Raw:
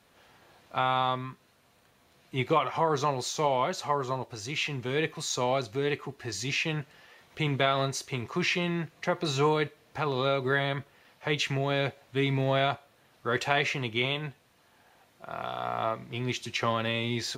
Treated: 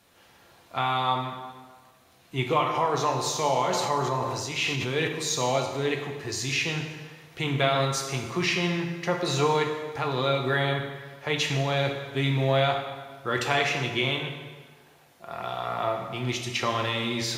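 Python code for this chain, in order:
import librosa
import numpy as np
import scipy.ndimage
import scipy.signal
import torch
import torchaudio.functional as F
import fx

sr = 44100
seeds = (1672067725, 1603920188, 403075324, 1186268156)

y = fx.high_shelf(x, sr, hz=5000.0, db=5.5)
y = fx.rev_plate(y, sr, seeds[0], rt60_s=1.5, hf_ratio=0.8, predelay_ms=0, drr_db=2.5)
y = fx.sustainer(y, sr, db_per_s=22.0, at=(3.71, 5.07), fade=0.02)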